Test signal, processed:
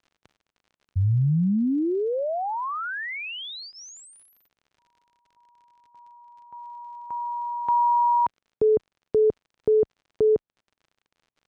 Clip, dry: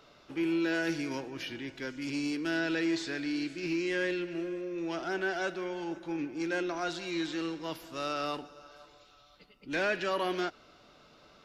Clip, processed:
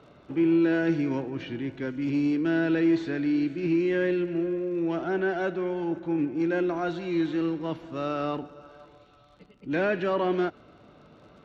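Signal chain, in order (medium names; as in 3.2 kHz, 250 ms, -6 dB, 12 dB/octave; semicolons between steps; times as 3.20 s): high-pass 89 Hz 12 dB/octave; tilt EQ -3 dB/octave; band-stop 5 kHz, Q 7.3; crackle 52 per s -49 dBFS; distance through air 100 m; trim +3.5 dB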